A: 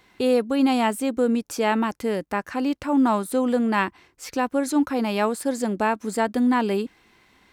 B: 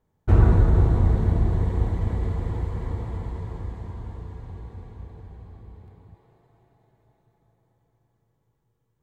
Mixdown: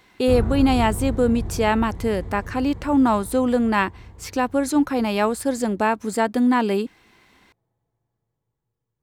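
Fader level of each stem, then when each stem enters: +2.0, -8.0 dB; 0.00, 0.00 s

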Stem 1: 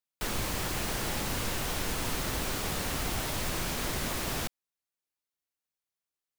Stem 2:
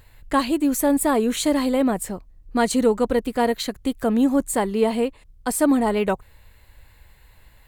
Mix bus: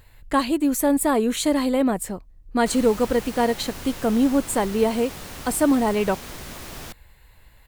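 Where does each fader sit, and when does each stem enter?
-4.5, -0.5 dB; 2.45, 0.00 s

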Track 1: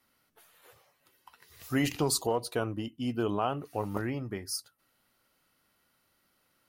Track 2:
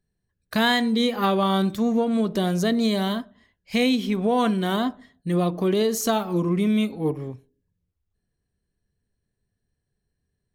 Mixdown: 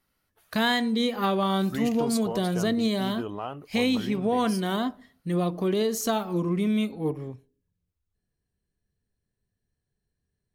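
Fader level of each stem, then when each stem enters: -4.5, -3.5 dB; 0.00, 0.00 s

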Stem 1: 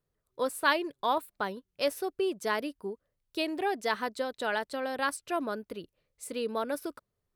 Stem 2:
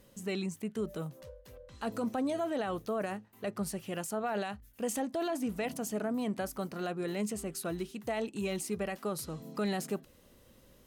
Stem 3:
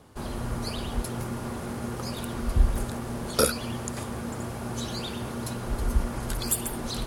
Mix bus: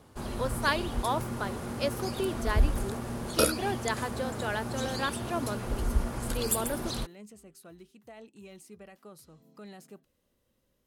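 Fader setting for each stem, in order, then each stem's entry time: -2.0, -14.5, -2.5 dB; 0.00, 0.00, 0.00 s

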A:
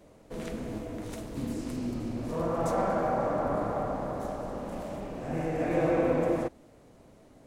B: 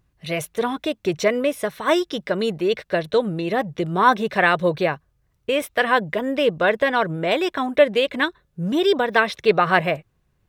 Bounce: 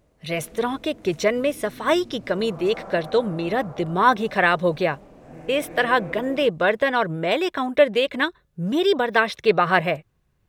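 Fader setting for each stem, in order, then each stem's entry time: -9.5, -1.0 dB; 0.00, 0.00 s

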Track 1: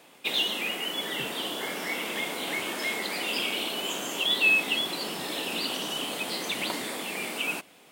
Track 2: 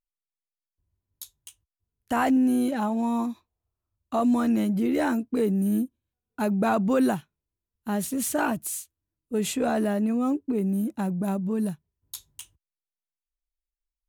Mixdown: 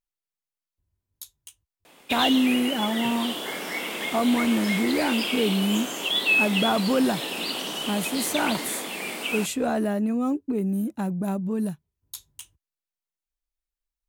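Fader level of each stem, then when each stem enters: +1.0, 0.0 dB; 1.85, 0.00 s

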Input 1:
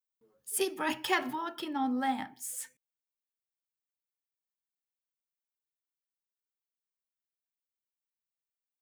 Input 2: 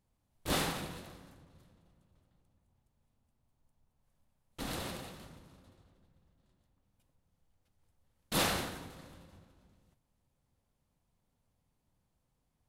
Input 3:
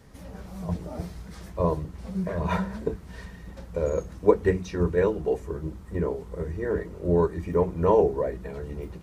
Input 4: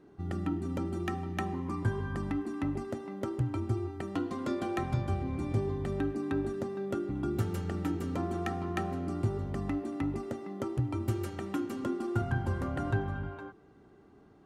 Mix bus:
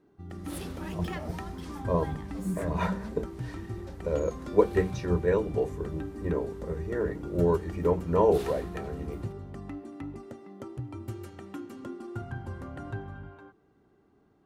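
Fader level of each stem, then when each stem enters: -12.5, -14.5, -2.5, -6.5 dB; 0.00, 0.00, 0.30, 0.00 s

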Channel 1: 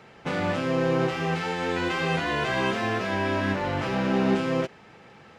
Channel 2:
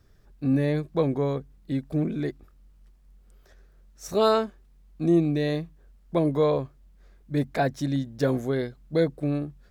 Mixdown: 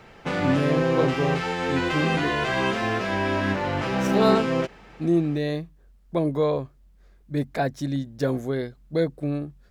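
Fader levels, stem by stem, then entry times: +1.5, -0.5 dB; 0.00, 0.00 s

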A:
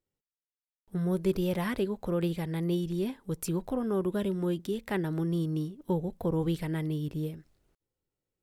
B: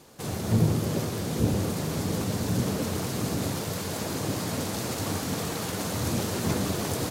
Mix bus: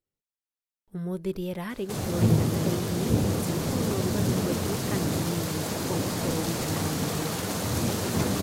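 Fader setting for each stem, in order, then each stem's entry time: -3.0, +1.0 dB; 0.00, 1.70 s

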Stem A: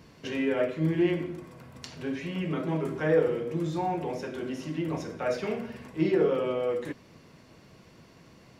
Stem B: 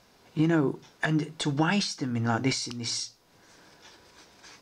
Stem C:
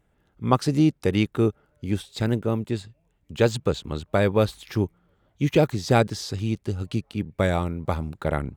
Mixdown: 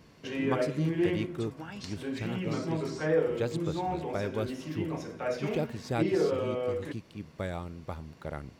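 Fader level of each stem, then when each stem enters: -3.0, -18.0, -13.0 dB; 0.00, 0.00, 0.00 s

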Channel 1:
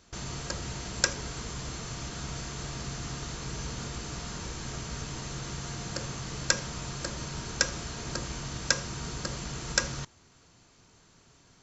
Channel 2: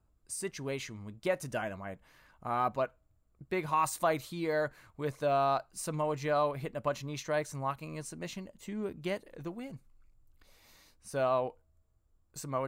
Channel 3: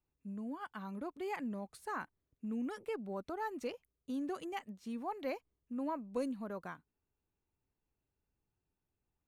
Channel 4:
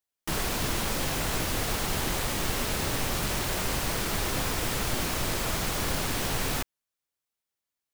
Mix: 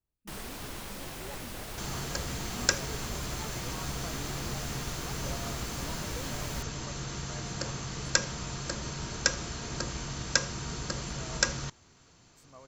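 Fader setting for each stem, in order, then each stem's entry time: 0.0, -19.0, -9.0, -12.0 dB; 1.65, 0.00, 0.00, 0.00 s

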